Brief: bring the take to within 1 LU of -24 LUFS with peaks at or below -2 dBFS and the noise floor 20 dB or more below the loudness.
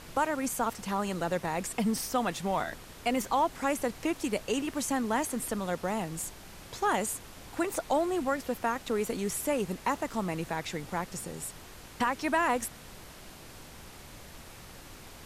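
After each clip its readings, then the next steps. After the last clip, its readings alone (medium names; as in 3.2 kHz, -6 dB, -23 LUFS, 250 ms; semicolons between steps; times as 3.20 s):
noise floor -49 dBFS; noise floor target -52 dBFS; loudness -31.5 LUFS; peak level -16.0 dBFS; loudness target -24.0 LUFS
-> noise print and reduce 6 dB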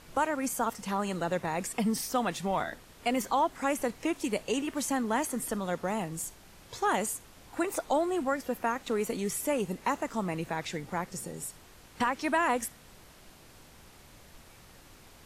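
noise floor -55 dBFS; loudness -31.5 LUFS; peak level -16.0 dBFS; loudness target -24.0 LUFS
-> trim +7.5 dB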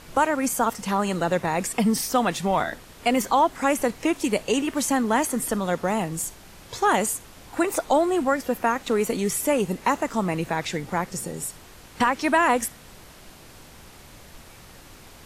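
loudness -24.0 LUFS; peak level -8.5 dBFS; noise floor -47 dBFS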